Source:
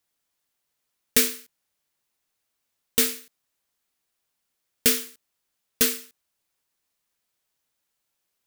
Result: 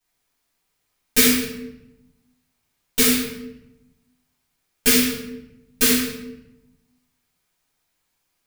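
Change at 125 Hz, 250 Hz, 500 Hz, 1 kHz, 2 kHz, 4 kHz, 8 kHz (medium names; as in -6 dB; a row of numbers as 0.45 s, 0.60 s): +10.0 dB, +12.0 dB, +6.0 dB, +8.0 dB, +8.0 dB, +6.0 dB, +4.5 dB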